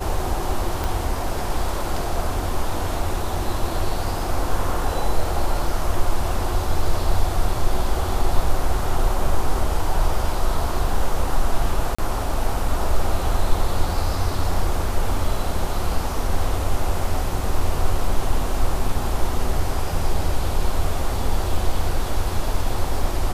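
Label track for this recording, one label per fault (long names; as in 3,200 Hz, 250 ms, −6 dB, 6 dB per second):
0.840000	0.840000	click
11.950000	11.980000	drop-out 35 ms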